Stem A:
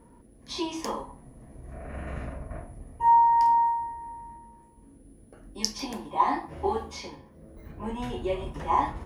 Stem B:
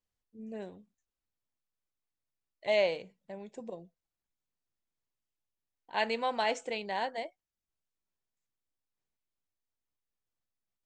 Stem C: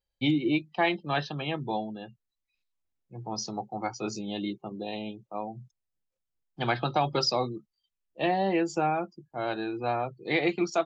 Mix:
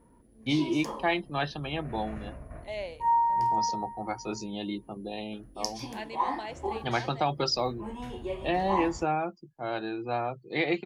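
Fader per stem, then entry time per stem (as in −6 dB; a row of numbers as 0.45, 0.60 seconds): −5.5, −9.5, −1.5 decibels; 0.00, 0.00, 0.25 seconds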